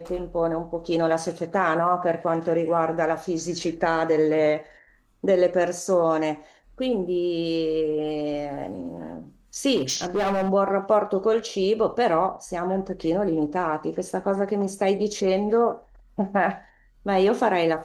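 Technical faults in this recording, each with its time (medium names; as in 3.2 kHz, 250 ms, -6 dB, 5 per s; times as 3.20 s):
9.76–10.50 s: clipped -20 dBFS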